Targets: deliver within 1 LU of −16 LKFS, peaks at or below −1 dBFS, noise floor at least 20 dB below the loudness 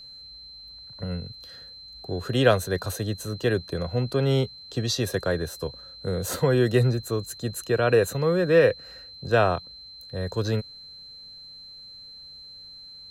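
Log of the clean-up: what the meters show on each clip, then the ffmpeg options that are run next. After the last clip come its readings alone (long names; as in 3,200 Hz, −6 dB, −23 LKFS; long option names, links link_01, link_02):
interfering tone 4,100 Hz; level of the tone −42 dBFS; integrated loudness −25.0 LKFS; sample peak −5.5 dBFS; target loudness −16.0 LKFS
→ -af "bandreject=frequency=4100:width=30"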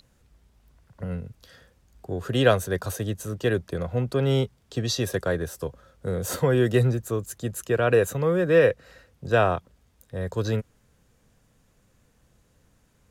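interfering tone none found; integrated loudness −25.0 LKFS; sample peak −5.5 dBFS; target loudness −16.0 LKFS
→ -af "volume=9dB,alimiter=limit=-1dB:level=0:latency=1"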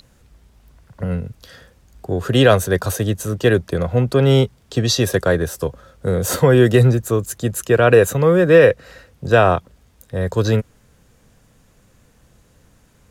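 integrated loudness −16.5 LKFS; sample peak −1.0 dBFS; background noise floor −55 dBFS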